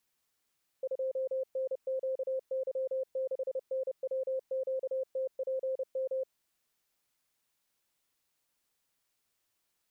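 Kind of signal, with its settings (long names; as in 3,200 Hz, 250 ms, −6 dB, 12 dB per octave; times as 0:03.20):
Morse code "2NQY6NWQTPM" 30 words per minute 525 Hz −30 dBFS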